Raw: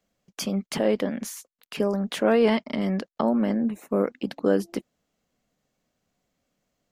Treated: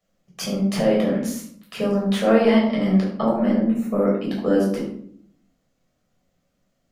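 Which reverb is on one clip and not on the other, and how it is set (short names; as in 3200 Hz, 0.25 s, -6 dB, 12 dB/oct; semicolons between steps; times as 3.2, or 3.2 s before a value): shoebox room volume 880 m³, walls furnished, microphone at 6.2 m; gain -4 dB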